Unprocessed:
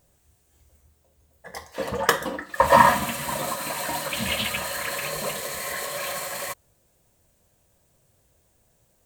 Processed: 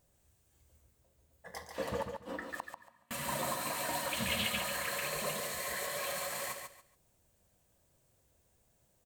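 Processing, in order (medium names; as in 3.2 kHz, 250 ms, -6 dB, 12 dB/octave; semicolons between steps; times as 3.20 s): 1.90–3.11 s: inverted gate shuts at -18 dBFS, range -42 dB; feedback delay 141 ms, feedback 23%, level -6 dB; trim -8 dB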